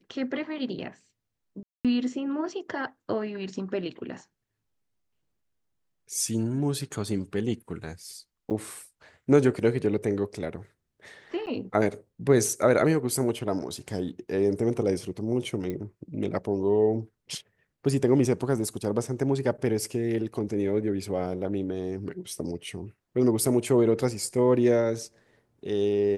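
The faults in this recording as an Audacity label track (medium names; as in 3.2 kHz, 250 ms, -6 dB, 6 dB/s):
1.630000	1.850000	dropout 217 ms
8.500000	8.510000	dropout 8.4 ms
11.460000	11.470000	dropout 9.3 ms
15.700000	15.700000	pop -21 dBFS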